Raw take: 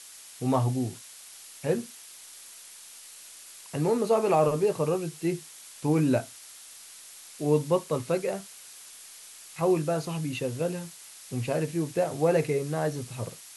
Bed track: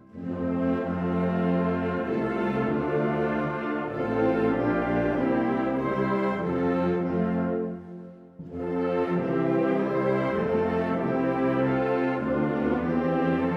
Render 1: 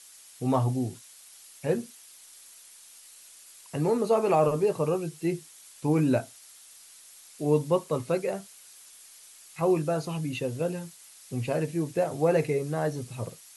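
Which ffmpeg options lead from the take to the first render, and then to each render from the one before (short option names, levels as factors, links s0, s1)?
-af "afftdn=nr=6:nf=-48"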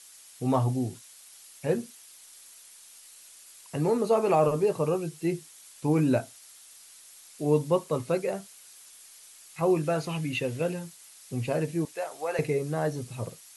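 -filter_complex "[0:a]asettb=1/sr,asplit=3[s0][s1][s2];[s0]atrim=end=9.834[s3];[s1]atrim=start=9.83:end=10.74,asetpts=PTS-STARTPTS,afade=t=in:d=0.004:c=qsin,afade=t=out:st=0.906:d=0.004:c=qsin,equalizer=f=2200:t=o:w=1.1:g=7.5[s4];[s2]atrim=start=10.736[s5];[s3][s4]acrossfade=d=0.004:c1=hsin:c2=qsin[s6];[s6][s5]acrossfade=d=0.004:c1=qsin:c2=hsin,asettb=1/sr,asplit=3[s7][s8][s9];[s7]atrim=end=11.854[s10];[s8]atrim=start=11.85:end=12.39,asetpts=PTS-STARTPTS,afade=t=in:d=0.004:c=qsin,afade=t=out:st=0.536:d=0.004:c=qsin,highpass=800[s11];[s9]atrim=start=12.386[s12];[s10][s11]acrossfade=d=0.004:c1=hsin:c2=qsin[s13];[s13][s12]acrossfade=d=0.004:c1=qsin:c2=hsin"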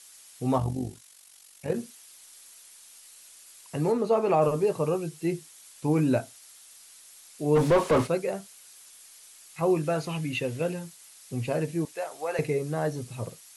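-filter_complex "[0:a]asplit=3[s0][s1][s2];[s0]afade=t=out:st=0.57:d=0.02[s3];[s1]tremolo=f=47:d=0.667,afade=t=in:st=0.57:d=0.02,afade=t=out:st=1.74:d=0.02[s4];[s2]afade=t=in:st=1.74:d=0.02[s5];[s3][s4][s5]amix=inputs=3:normalize=0,asettb=1/sr,asplit=3[s6][s7][s8];[s6]atrim=end=3.924[s9];[s7]atrim=start=3.92:end=4.42,asetpts=PTS-STARTPTS,afade=t=in:d=0.004:c=qsin,afade=t=out:st=0.496:d=0.004:c=qsin,highshelf=f=6700:g=-11.5[s10];[s8]atrim=start=4.416[s11];[s9][s10]acrossfade=d=0.004:c1=hsin:c2=qsin[s12];[s12][s11]acrossfade=d=0.004:c1=qsin:c2=hsin,asplit=3[s13][s14][s15];[s13]afade=t=out:st=7.55:d=0.02[s16];[s14]asplit=2[s17][s18];[s18]highpass=f=720:p=1,volume=39.8,asoftclip=type=tanh:threshold=0.251[s19];[s17][s19]amix=inputs=2:normalize=0,lowpass=f=1100:p=1,volume=0.501,afade=t=in:st=7.55:d=0.02,afade=t=out:st=8.06:d=0.02[s20];[s15]afade=t=in:st=8.06:d=0.02[s21];[s16][s20][s21]amix=inputs=3:normalize=0"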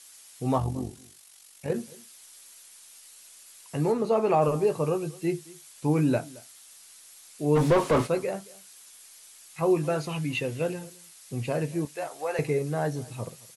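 -filter_complex "[0:a]asplit=2[s0][s1];[s1]adelay=14,volume=0.282[s2];[s0][s2]amix=inputs=2:normalize=0,aecho=1:1:221:0.075"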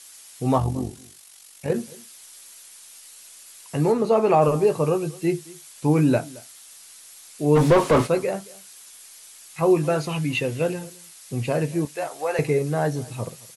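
-af "volume=1.78"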